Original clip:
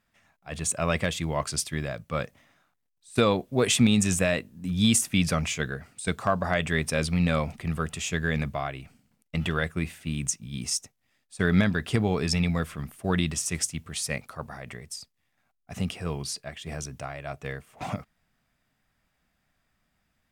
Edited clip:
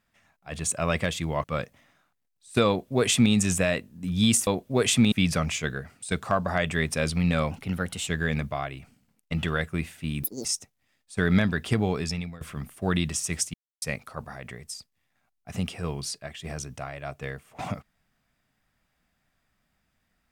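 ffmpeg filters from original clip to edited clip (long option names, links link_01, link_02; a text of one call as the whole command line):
ffmpeg -i in.wav -filter_complex "[0:a]asplit=11[link_01][link_02][link_03][link_04][link_05][link_06][link_07][link_08][link_09][link_10][link_11];[link_01]atrim=end=1.442[link_12];[link_02]atrim=start=2.048:end=5.082[link_13];[link_03]atrim=start=3.288:end=3.942[link_14];[link_04]atrim=start=5.078:end=7.474[link_15];[link_05]atrim=start=7.47:end=8.1,asetpts=PTS-STARTPTS,asetrate=49392,aresample=44100,atrim=end_sample=24806,asetpts=PTS-STARTPTS[link_16];[link_06]atrim=start=8.096:end=10.264[link_17];[link_07]atrim=start=10.26:end=10.67,asetpts=PTS-STARTPTS,asetrate=83349,aresample=44100[link_18];[link_08]atrim=start=10.666:end=12.63,asetpts=PTS-STARTPTS,afade=type=out:start_time=1.414:duration=0.55:silence=0.0707946[link_19];[link_09]atrim=start=12.63:end=13.76,asetpts=PTS-STARTPTS,afade=type=in:duration=0.004:curve=hsin:silence=0.0707946,afade=type=out:start_time=1.126:duration=0.004:curve=hsin[link_20];[link_10]atrim=start=13.76:end=14.04,asetpts=PTS-STARTPTS,volume=0[link_21];[link_11]atrim=start=14.04,asetpts=PTS-STARTPTS,afade=type=in:duration=0.004:curve=hsin[link_22];[link_12][link_13]acrossfade=duration=0.004:curve1=hsin:curve2=hsin[link_23];[link_23][link_14]acrossfade=duration=0.004:curve1=hsin:curve2=hsin[link_24];[link_24][link_15]acrossfade=duration=0.004:curve1=hsin:curve2=hsin[link_25];[link_25][link_16]acrossfade=duration=0.004:curve1=hsin:curve2=hsin[link_26];[link_26][link_17]acrossfade=duration=0.004:curve1=hsin:curve2=hsin[link_27];[link_27][link_18]acrossfade=duration=0.004:curve1=hsin:curve2=hsin[link_28];[link_19][link_20][link_21][link_22]concat=n=4:v=0:a=1[link_29];[link_28][link_29]acrossfade=duration=0.004:curve1=hsin:curve2=hsin" out.wav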